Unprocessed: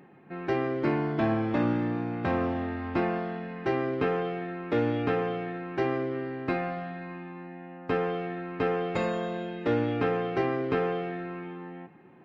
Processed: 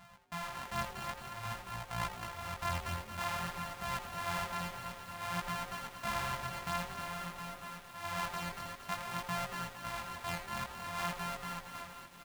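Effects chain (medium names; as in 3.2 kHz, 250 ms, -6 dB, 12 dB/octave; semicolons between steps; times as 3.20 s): sorted samples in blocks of 128 samples; FFT filter 200 Hz 0 dB, 320 Hz -26 dB, 890 Hz +6 dB, 5.5 kHz -1 dB; compressor with a negative ratio -33 dBFS, ratio -0.5; trance gate "xx..xxxx.xx." 189 bpm; chorus 0.53 Hz, delay 16 ms, depth 7.7 ms; on a send: frequency-shifting echo 83 ms, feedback 51%, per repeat -150 Hz, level -11 dB; on the sum: bit-crushed delay 230 ms, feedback 80%, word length 8-bit, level -9 dB; trim -2.5 dB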